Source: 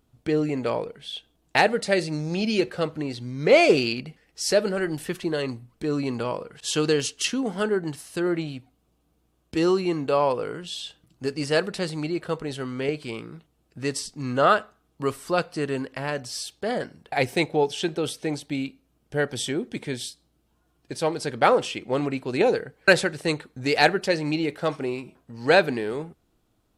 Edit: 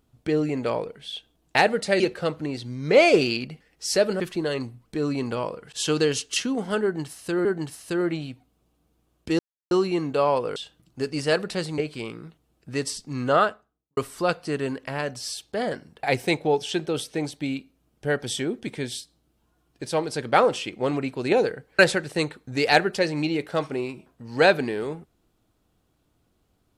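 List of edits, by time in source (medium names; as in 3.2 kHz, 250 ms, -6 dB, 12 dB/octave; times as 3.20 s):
2.00–2.56 s: delete
4.76–5.08 s: delete
7.71–8.33 s: loop, 2 plays
9.65 s: insert silence 0.32 s
10.50–10.80 s: delete
12.02–12.87 s: delete
14.36–15.06 s: studio fade out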